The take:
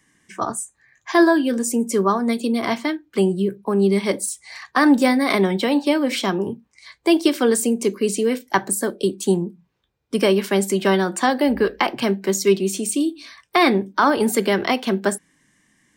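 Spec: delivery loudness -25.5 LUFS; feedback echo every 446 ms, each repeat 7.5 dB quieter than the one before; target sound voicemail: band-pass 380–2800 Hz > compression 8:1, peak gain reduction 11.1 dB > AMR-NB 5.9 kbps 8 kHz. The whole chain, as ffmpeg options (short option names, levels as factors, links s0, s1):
-af "highpass=380,lowpass=2800,aecho=1:1:446|892|1338|1784|2230:0.422|0.177|0.0744|0.0312|0.0131,acompressor=threshold=0.0794:ratio=8,volume=1.58" -ar 8000 -c:a libopencore_amrnb -b:a 5900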